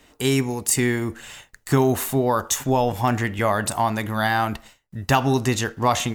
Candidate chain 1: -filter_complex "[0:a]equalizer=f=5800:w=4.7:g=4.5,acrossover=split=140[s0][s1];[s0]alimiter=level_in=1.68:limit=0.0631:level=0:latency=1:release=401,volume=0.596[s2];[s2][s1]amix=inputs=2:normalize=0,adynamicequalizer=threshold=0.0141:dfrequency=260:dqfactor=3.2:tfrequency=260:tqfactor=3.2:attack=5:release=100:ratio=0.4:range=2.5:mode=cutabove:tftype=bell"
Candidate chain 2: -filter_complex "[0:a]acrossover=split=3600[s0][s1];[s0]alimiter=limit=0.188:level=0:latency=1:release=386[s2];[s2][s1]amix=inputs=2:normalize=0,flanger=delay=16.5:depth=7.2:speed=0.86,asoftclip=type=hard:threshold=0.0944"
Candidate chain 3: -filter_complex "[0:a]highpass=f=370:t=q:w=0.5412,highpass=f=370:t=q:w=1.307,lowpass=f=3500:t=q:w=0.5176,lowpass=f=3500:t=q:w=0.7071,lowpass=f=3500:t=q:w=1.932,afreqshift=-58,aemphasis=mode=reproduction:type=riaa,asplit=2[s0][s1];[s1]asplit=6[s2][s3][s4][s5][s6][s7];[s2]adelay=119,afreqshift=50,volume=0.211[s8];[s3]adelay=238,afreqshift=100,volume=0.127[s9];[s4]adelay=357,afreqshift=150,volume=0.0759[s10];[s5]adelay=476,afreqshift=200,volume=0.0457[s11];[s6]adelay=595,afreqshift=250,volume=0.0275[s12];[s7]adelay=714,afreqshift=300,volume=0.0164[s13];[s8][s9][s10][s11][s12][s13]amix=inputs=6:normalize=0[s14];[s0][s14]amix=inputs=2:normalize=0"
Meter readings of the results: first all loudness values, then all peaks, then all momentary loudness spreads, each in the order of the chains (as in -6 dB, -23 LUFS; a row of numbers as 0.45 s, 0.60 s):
-22.5 LUFS, -28.5 LUFS, -23.0 LUFS; -2.5 dBFS, -20.5 dBFS, -6.0 dBFS; 12 LU, 9 LU, 9 LU